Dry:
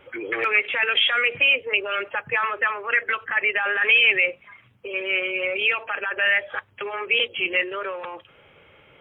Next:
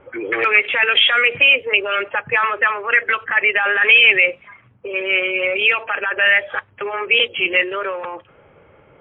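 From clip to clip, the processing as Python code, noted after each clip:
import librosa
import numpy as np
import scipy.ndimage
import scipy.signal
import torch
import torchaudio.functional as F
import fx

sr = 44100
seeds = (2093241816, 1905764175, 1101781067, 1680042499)

y = fx.env_lowpass(x, sr, base_hz=1200.0, full_db=-16.5)
y = F.gain(torch.from_numpy(y), 6.0).numpy()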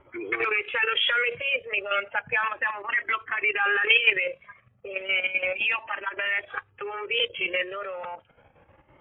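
y = fx.level_steps(x, sr, step_db=10)
y = fx.comb_cascade(y, sr, direction='rising', hz=0.33)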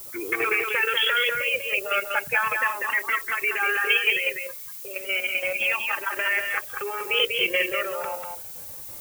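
y = fx.rider(x, sr, range_db=4, speed_s=2.0)
y = fx.dmg_noise_colour(y, sr, seeds[0], colour='violet', level_db=-40.0)
y = y + 10.0 ** (-4.5 / 20.0) * np.pad(y, (int(194 * sr / 1000.0), 0))[:len(y)]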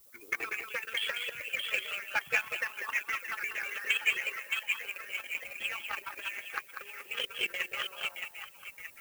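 y = fx.hpss(x, sr, part='harmonic', gain_db=-17)
y = fx.echo_stepped(y, sr, ms=620, hz=2800.0, octaves=-0.7, feedback_pct=70, wet_db=-2.5)
y = fx.power_curve(y, sr, exponent=1.4)
y = F.gain(torch.from_numpy(y), -2.5).numpy()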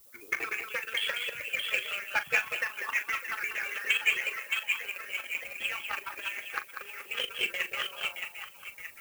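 y = fx.doubler(x, sr, ms=40.0, db=-12.5)
y = F.gain(torch.from_numpy(y), 2.0).numpy()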